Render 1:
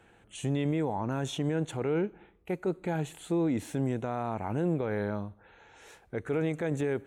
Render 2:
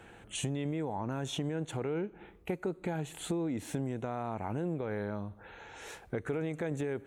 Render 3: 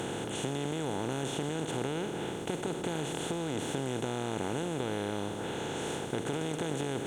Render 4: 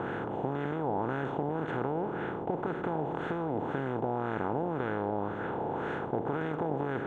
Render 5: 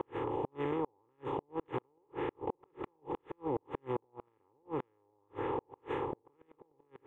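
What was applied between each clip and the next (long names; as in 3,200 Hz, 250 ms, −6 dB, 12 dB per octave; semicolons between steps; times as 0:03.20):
downward compressor 5 to 1, threshold −39 dBFS, peak gain reduction 13 dB; level +6.5 dB
compressor on every frequency bin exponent 0.2; level −6.5 dB
auto-filter low-pass sine 1.9 Hz 800–1,600 Hz
phaser with its sweep stopped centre 1,000 Hz, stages 8; gate with flip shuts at −26 dBFS, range −40 dB; level +2.5 dB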